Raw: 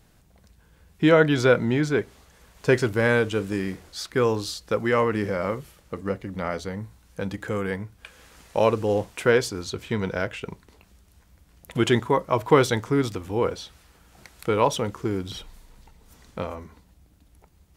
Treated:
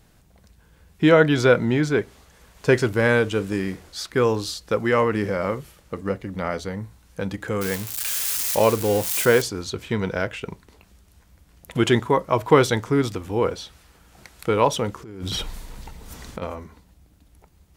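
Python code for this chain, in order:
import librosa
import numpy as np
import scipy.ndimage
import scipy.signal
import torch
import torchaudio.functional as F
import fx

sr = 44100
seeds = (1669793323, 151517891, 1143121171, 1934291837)

y = fx.crossing_spikes(x, sr, level_db=-19.0, at=(7.61, 9.42))
y = fx.over_compress(y, sr, threshold_db=-38.0, ratio=-1.0, at=(15.02, 16.41), fade=0.02)
y = y * 10.0 ** (2.0 / 20.0)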